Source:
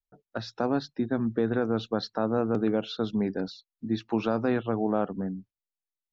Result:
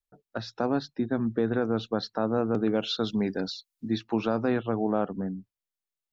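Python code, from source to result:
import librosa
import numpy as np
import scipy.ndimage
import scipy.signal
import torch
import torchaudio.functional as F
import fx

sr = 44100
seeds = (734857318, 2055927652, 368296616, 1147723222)

y = fx.high_shelf(x, sr, hz=2300.0, db=10.0, at=(2.75, 3.98))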